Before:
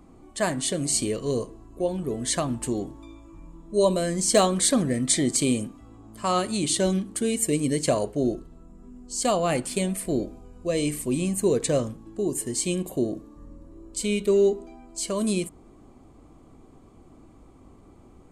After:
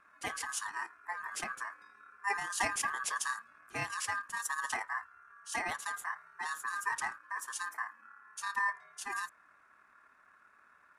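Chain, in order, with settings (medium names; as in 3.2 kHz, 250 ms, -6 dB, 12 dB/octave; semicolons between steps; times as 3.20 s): ring modulator 1.4 kHz; granular stretch 0.6×, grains 55 ms; trim -8.5 dB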